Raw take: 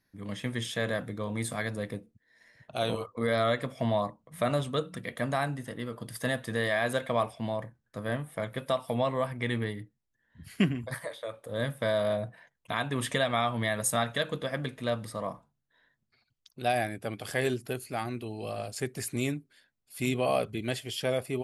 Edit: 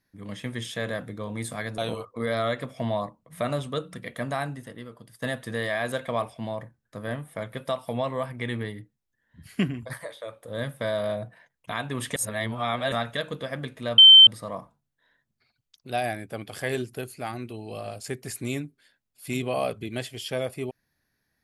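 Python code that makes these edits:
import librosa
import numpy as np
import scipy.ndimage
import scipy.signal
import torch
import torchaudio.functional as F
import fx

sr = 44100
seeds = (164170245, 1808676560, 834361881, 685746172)

y = fx.edit(x, sr, fx.cut(start_s=1.78, length_s=1.01),
    fx.fade_out_to(start_s=5.46, length_s=0.77, floor_db=-15.0),
    fx.reverse_span(start_s=13.17, length_s=0.76),
    fx.insert_tone(at_s=14.99, length_s=0.29, hz=3100.0, db=-7.0), tone=tone)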